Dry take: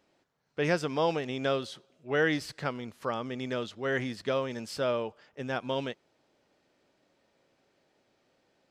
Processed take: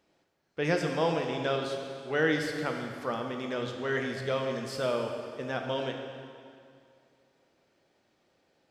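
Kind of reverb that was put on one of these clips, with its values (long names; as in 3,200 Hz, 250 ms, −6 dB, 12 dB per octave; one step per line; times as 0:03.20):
dense smooth reverb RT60 2.3 s, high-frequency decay 0.85×, DRR 2.5 dB
level −1.5 dB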